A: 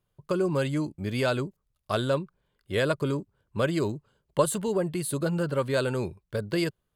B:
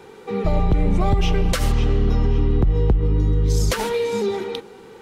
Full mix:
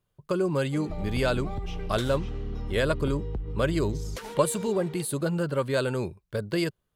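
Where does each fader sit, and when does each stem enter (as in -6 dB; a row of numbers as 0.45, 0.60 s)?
0.0, -15.5 dB; 0.00, 0.45 s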